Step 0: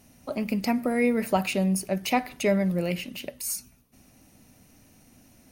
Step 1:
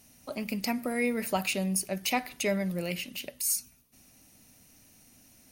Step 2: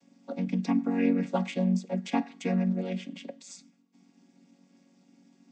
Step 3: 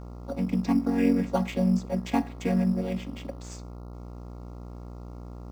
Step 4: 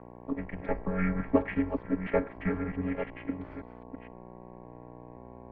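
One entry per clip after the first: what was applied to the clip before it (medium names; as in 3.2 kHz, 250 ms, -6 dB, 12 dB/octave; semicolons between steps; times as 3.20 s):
treble shelf 2.1 kHz +9.5 dB; trim -6.5 dB
vocoder on a held chord major triad, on F#3; trim +4 dB
mains buzz 60 Hz, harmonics 23, -43 dBFS -6 dB/octave; in parallel at -10 dB: sample-rate reducer 5.2 kHz, jitter 0%
chunks repeated in reverse 517 ms, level -8 dB; mistuned SSB -280 Hz 400–2500 Hz; trim +4 dB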